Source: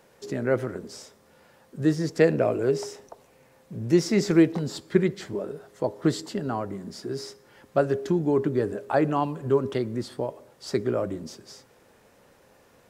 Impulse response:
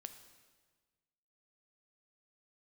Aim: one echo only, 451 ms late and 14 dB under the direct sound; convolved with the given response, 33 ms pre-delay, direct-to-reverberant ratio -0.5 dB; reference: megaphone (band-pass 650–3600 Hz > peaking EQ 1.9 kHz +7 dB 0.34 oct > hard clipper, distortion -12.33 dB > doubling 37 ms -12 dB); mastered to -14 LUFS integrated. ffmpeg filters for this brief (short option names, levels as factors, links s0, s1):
-filter_complex "[0:a]aecho=1:1:451:0.2,asplit=2[s0][s1];[1:a]atrim=start_sample=2205,adelay=33[s2];[s1][s2]afir=irnorm=-1:irlink=0,volume=1.88[s3];[s0][s3]amix=inputs=2:normalize=0,highpass=650,lowpass=3600,equalizer=f=1900:t=o:w=0.34:g=7,asoftclip=type=hard:threshold=0.1,asplit=2[s4][s5];[s5]adelay=37,volume=0.251[s6];[s4][s6]amix=inputs=2:normalize=0,volume=7.08"